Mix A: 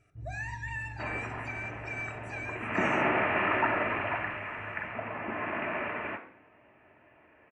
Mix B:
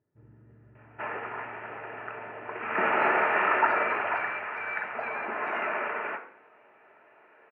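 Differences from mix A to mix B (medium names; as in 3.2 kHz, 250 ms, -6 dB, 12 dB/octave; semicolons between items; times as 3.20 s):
speech: entry +2.70 s; first sound: send +11.0 dB; master: add cabinet simulation 270–3200 Hz, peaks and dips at 290 Hz -7 dB, 440 Hz +7 dB, 860 Hz +5 dB, 1.4 kHz +8 dB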